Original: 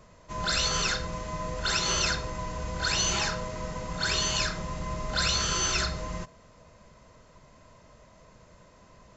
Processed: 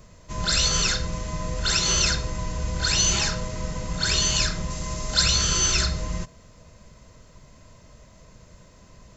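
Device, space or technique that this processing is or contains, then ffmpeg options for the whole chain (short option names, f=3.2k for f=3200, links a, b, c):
smiley-face EQ: -filter_complex "[0:a]lowshelf=f=160:g=6.5,equalizer=f=930:t=o:w=1.6:g=-4,highshelf=f=5.2k:g=8,asettb=1/sr,asplit=3[a][b][c];[a]atrim=end=4.704[d];[b]atrim=start=4.7:end=5.22,asetpts=PTS-STARTPTS,afade=t=in:d=0.004:c=qsin,afade=t=out:st=0.516:d=0.004:c=qsin,bass=f=250:g=-4,treble=f=4k:g=7[e];[c]atrim=start=5.216[f];[d][e]acrossfade=d=0.004:c1=hsin:c2=qsin[g];[g][f]acrossfade=d=0.004:c1=qsin:c2=hsin,volume=2.5dB"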